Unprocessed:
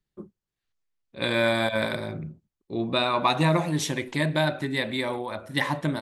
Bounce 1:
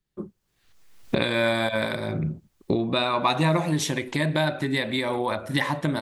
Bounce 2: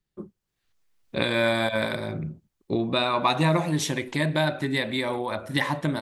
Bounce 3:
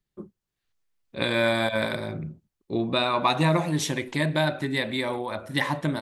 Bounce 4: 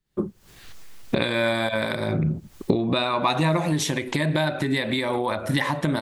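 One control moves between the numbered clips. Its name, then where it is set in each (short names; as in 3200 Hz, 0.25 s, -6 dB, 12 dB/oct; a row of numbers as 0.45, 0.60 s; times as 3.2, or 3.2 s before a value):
recorder AGC, rising by: 31, 13, 5.1, 89 dB/s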